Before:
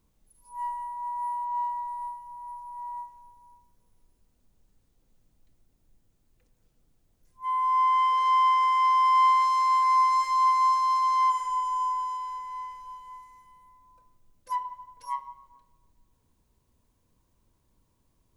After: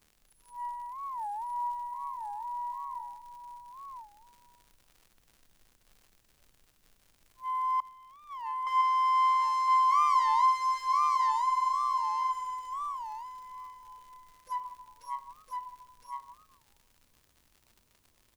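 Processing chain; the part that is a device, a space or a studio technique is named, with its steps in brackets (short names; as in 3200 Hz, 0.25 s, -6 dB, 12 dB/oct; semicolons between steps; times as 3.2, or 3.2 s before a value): warped LP (record warp 33 1/3 rpm, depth 250 cents; crackle 86/s -42 dBFS; white noise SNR 43 dB); 7.8–8.67 gate -19 dBFS, range -26 dB; echo 1.011 s -3 dB; gain -5 dB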